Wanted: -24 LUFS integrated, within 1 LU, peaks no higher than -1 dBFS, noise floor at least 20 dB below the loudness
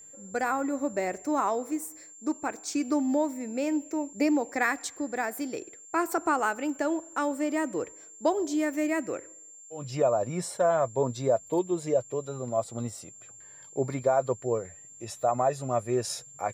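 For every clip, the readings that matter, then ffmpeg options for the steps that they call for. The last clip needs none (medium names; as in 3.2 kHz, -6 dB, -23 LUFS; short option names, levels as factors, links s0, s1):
steady tone 7.3 kHz; tone level -47 dBFS; loudness -29.0 LUFS; peak level -13.0 dBFS; loudness target -24.0 LUFS
-> -af "bandreject=f=7300:w=30"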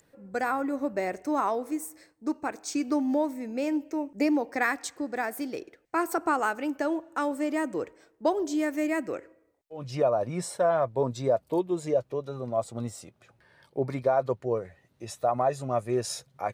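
steady tone not found; loudness -29.5 LUFS; peak level -13.0 dBFS; loudness target -24.0 LUFS
-> -af "volume=1.88"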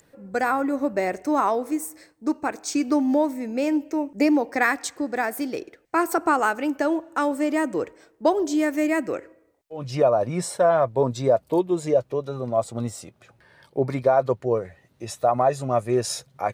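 loudness -24.0 LUFS; peak level -7.5 dBFS; noise floor -62 dBFS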